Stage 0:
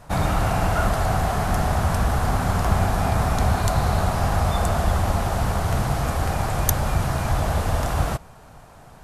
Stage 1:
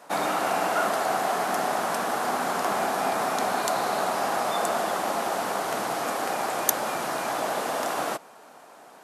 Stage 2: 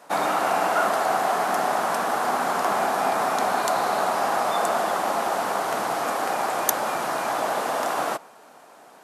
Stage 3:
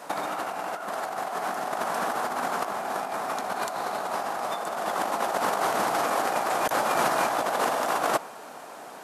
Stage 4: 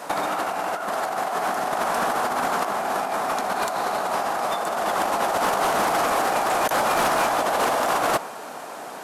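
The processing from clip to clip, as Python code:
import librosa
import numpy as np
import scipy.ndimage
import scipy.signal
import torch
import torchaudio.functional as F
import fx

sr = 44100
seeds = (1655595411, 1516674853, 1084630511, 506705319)

y1 = scipy.signal.sosfilt(scipy.signal.butter(4, 270.0, 'highpass', fs=sr, output='sos'), x)
y2 = fx.dynamic_eq(y1, sr, hz=1000.0, q=0.77, threshold_db=-38.0, ratio=4.0, max_db=4)
y3 = fx.over_compress(y2, sr, threshold_db=-28.0, ratio=-0.5)
y3 = F.gain(torch.from_numpy(y3), 1.5).numpy()
y4 = 10.0 ** (-22.0 / 20.0) * np.tanh(y3 / 10.0 ** (-22.0 / 20.0))
y4 = F.gain(torch.from_numpy(y4), 6.5).numpy()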